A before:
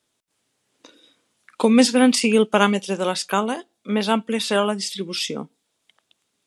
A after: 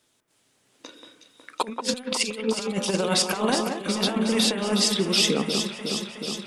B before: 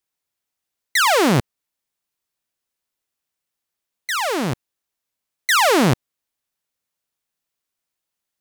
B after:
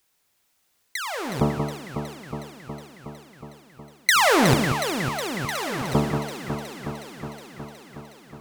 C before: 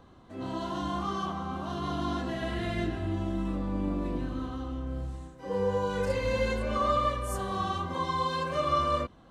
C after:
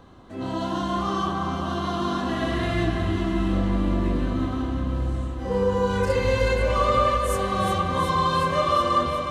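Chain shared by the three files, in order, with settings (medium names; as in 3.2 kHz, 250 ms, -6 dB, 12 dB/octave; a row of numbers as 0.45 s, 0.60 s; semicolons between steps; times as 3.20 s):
de-hum 73.54 Hz, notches 18; compressor with a negative ratio -25 dBFS, ratio -0.5; on a send: echo whose repeats swap between lows and highs 183 ms, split 2.3 kHz, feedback 85%, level -6 dB; on the sum: normalise loudness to -24 LUFS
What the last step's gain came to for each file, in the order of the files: 0.0 dB, +4.5 dB, +6.0 dB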